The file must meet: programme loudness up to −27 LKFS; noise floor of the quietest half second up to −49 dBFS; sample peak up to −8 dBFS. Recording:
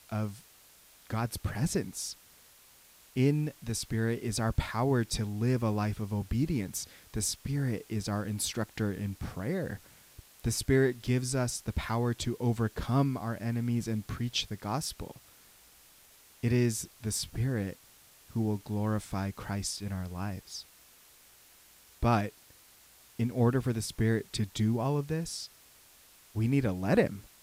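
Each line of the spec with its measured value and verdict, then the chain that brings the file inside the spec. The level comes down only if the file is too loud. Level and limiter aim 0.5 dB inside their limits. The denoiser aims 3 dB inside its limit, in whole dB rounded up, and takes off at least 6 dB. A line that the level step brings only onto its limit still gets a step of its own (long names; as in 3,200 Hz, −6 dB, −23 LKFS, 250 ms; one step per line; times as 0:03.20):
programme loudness −32.0 LKFS: in spec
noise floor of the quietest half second −59 dBFS: in spec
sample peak −13.0 dBFS: in spec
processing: no processing needed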